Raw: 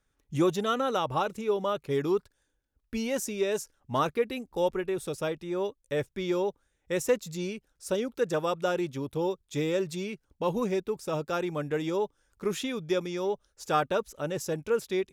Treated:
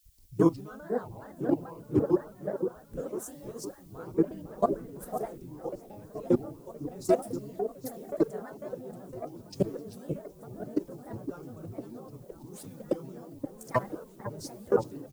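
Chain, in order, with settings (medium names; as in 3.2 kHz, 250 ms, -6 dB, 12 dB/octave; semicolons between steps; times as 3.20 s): bass shelf 200 Hz +11 dB; doubling 34 ms -6 dB; level held to a coarse grid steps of 21 dB; high-order bell 2.9 kHz -13 dB; upward compressor, threshold -41 dBFS; on a send: delay with an opening low-pass 510 ms, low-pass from 750 Hz, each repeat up 1 oct, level -6 dB; on the sum: granulator 124 ms, grains 27 per s, spray 11 ms, pitch spread up and down by 7 st; added noise blue -66 dBFS; three bands expanded up and down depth 40%; trim +2.5 dB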